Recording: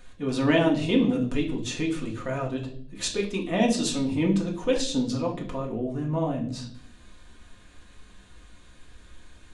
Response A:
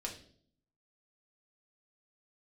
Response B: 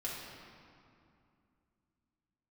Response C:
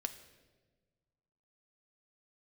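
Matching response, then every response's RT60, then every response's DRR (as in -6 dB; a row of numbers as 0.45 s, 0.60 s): A; 0.55 s, 2.5 s, 1.4 s; -1.5 dB, -6.5 dB, 7.5 dB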